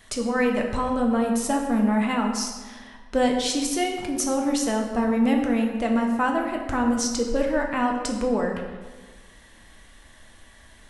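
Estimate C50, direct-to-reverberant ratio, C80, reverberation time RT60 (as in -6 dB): 4.5 dB, 1.0 dB, 6.5 dB, 1.4 s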